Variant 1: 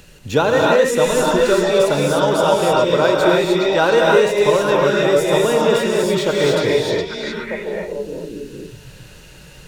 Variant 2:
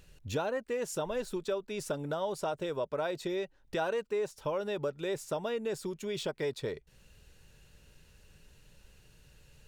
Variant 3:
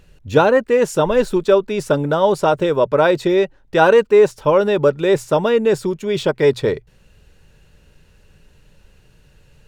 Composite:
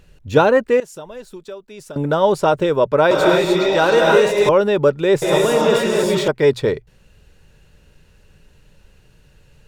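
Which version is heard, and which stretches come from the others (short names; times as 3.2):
3
0.8–1.96 from 2
3.11–4.49 from 1
5.22–6.28 from 1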